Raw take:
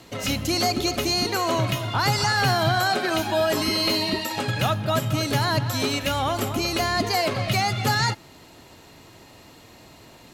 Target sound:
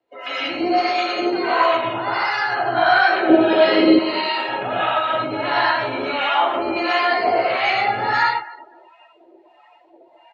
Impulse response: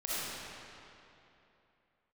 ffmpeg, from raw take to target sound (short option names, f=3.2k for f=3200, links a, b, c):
-filter_complex "[0:a]asplit=2[a][b];[b]adelay=15,volume=-7dB[c];[a][c]amix=inputs=2:normalize=0[d];[1:a]atrim=start_sample=2205,afade=t=out:st=0.21:d=0.01,atrim=end_sample=9702,asetrate=23814,aresample=44100[e];[d][e]afir=irnorm=-1:irlink=0,acrossover=split=720[f][g];[f]aeval=exprs='val(0)*(1-0.7/2+0.7/2*cos(2*PI*1.5*n/s))':c=same[h];[g]aeval=exprs='val(0)*(1-0.7/2-0.7/2*cos(2*PI*1.5*n/s))':c=same[i];[h][i]amix=inputs=2:normalize=0,acrossover=split=390 3200:gain=0.0708 1 0.0891[j][k][l];[j][k][l]amix=inputs=3:normalize=0,bandreject=f=1.1k:w=17,bandreject=f=46.66:t=h:w=4,bandreject=f=93.32:t=h:w=4,bandreject=f=139.98:t=h:w=4,bandreject=f=186.64:t=h:w=4,bandreject=f=233.3:t=h:w=4,asettb=1/sr,asplit=3[m][n][o];[m]atrim=end=1.764[p];[n]atrim=start=1.76:end=2.77,asetpts=PTS-STARTPTS,afade=t=in:d=0.004:c=qsin,afade=t=out:st=1.006:d=0.004:c=qsin,acompressor=threshold=-20dB:ratio=6[q];[o]atrim=start=2.766[r];[p][q]acrossfade=d=0.004:c1=hsin:c2=qsin[s];[s][r]acrossfade=d=0.004:c1=qsin:c2=hsin,asettb=1/sr,asplit=3[t][u][v];[t]atrim=end=3.294[w];[u]atrim=start=3.29:end=3.99,asetpts=PTS-STARTPTS,afade=t=in:d=0.004:c=qsin,afade=t=out:st=0.696:d=0.004:c=qsin,equalizer=f=125:t=o:w=1:g=11,equalizer=f=250:t=o:w=1:g=9,equalizer=f=500:t=o:w=1:g=12,equalizer=f=1k:t=o:w=1:g=-6,equalizer=f=4k:t=o:w=1:g=4,equalizer=f=8k:t=o:w=1:g=-8[x];[v]atrim=start=3.986[y];[w][x]acrossfade=d=0.004:c1=hsin:c2=qsin[z];[z][y]acrossfade=d=0.004:c1=qsin:c2=hsin,aecho=1:1:251|502:0.106|0.0297,afftdn=nr=21:nf=-40,volume=2.5dB"